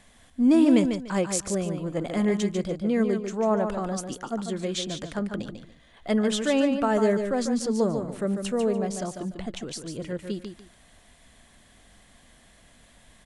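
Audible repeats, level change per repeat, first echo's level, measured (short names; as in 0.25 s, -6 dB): 2, -12.5 dB, -7.0 dB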